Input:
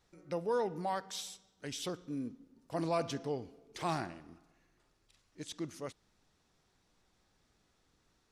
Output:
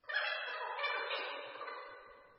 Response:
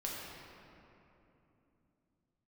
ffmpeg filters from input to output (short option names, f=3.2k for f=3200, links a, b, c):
-filter_complex "[0:a]asetrate=153468,aresample=44100[a];[1:a]atrim=start_sample=2205,asetrate=66150,aresample=44100[b];[a][b]afir=irnorm=-1:irlink=0,volume=1dB" -ar 22050 -c:a libmp3lame -b:a 16k